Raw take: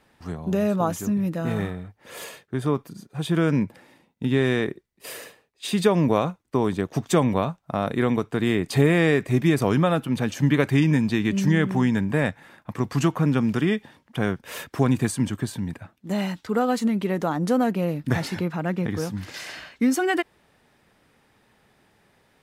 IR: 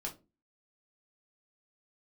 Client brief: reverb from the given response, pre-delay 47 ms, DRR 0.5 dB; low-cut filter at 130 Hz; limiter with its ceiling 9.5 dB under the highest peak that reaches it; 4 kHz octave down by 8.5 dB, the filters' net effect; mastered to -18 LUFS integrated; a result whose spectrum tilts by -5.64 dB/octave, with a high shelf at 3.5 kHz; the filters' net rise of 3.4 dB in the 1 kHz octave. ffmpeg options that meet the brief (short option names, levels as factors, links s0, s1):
-filter_complex "[0:a]highpass=130,equalizer=f=1000:t=o:g=5.5,highshelf=f=3500:g=-7.5,equalizer=f=4000:t=o:g=-6.5,alimiter=limit=0.2:level=0:latency=1,asplit=2[s0][s1];[1:a]atrim=start_sample=2205,adelay=47[s2];[s1][s2]afir=irnorm=-1:irlink=0,volume=1[s3];[s0][s3]amix=inputs=2:normalize=0,volume=1.68"